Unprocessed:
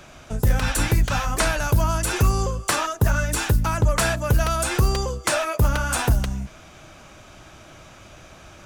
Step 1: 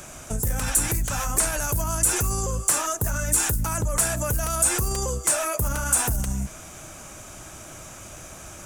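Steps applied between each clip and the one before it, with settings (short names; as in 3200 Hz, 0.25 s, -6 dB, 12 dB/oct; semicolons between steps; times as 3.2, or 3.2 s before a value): limiter -21.5 dBFS, peak gain reduction 11 dB; resonant high shelf 5800 Hz +12 dB, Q 1.5; gain +2.5 dB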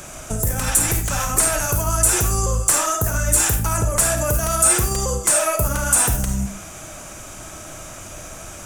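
reverb RT60 0.40 s, pre-delay 10 ms, DRR 5 dB; gain +4 dB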